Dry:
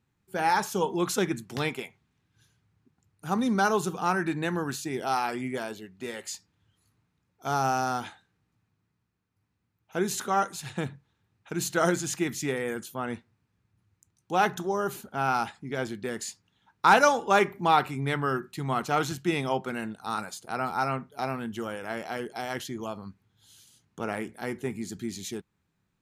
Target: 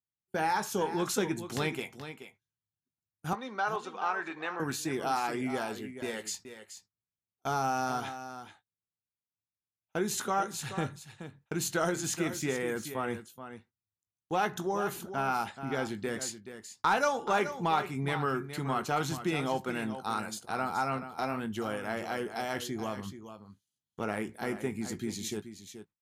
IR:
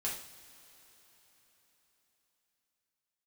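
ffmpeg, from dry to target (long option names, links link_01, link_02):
-filter_complex "[0:a]asettb=1/sr,asplit=3[link_01][link_02][link_03];[link_01]atrim=end=12.144[link_04];[link_02]atrim=start=12.14:end=12.65,asetpts=PTS-STARTPTS,afade=type=in:duration=0.004:curve=qsin,afade=type=out:start_time=0.506:duration=0.004:curve=qsin,deesser=0.7[link_05];[link_03]atrim=start=12.646[link_06];[link_04][link_05]acrossfade=duration=0.004:curve1=hsin:curve2=qsin[link_07];[link_07][link_06]acrossfade=duration=0.004:curve1=qsin:curve2=hsin,agate=range=-29dB:threshold=-46dB:ratio=16:detection=peak,acompressor=threshold=-29dB:ratio=2,asoftclip=type=tanh:threshold=-15dB,asettb=1/sr,asplit=3[link_08][link_09][link_10];[link_08]atrim=end=3.334[link_11];[link_09]atrim=start=3.33:end=4.6,asetpts=PTS-STARTPTS,afade=type=in:duration=0.004:curve=qsin,afade=type=out:start_time=1.266:duration=0.004:curve=qsin,highpass=580,lowpass=3400[link_12];[link_10]atrim=start=4.596[link_13];[link_11][link_12]acrossfade=duration=0.004:curve1=hsin:curve2=qsin[link_14];[link_14][link_13]acrossfade=duration=0.004:curve1=qsin:curve2=hsin,asplit=2[link_15][link_16];[link_16]adelay=19,volume=-12.5dB[link_17];[link_15][link_17]amix=inputs=2:normalize=0,asplit=2[link_18][link_19];[link_19]aecho=0:1:428:0.282[link_20];[link_18][link_20]amix=inputs=2:normalize=0"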